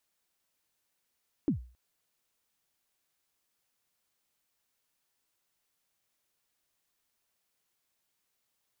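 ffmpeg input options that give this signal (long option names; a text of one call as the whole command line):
ffmpeg -f lavfi -i "aevalsrc='0.0891*pow(10,-3*t/0.39)*sin(2*PI*(340*0.111/log(61/340)*(exp(log(61/340)*min(t,0.111)/0.111)-1)+61*max(t-0.111,0)))':duration=0.27:sample_rate=44100" out.wav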